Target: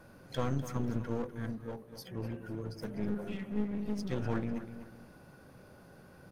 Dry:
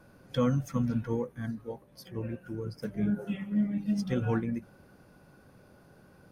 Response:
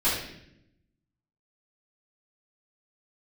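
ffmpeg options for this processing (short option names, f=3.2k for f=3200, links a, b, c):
-filter_complex "[0:a]bandreject=f=50:t=h:w=6,bandreject=f=100:t=h:w=6,bandreject=f=150:t=h:w=6,bandreject=f=200:t=h:w=6,bandreject=f=250:t=h:w=6,bandreject=f=300:t=h:w=6,bandreject=f=350:t=h:w=6,bandreject=f=400:t=h:w=6,bandreject=f=450:t=h:w=6,asplit=2[a][b];[b]asetrate=55563,aresample=44100,atempo=0.793701,volume=-18dB[c];[a][c]amix=inputs=2:normalize=0,aeval=exprs='clip(val(0),-1,0.0112)':c=same,aecho=1:1:248|496|744:0.211|0.055|0.0143,asplit=2[d][e];[e]alimiter=level_in=16dB:limit=-24dB:level=0:latency=1:release=189,volume=-16dB,volume=-2dB[f];[d][f]amix=inputs=2:normalize=0,volume=-3dB"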